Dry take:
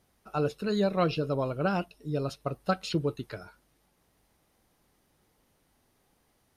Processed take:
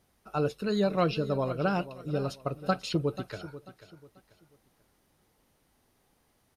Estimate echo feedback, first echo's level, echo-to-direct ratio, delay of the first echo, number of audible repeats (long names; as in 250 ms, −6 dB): 32%, −15.0 dB, −14.5 dB, 489 ms, 3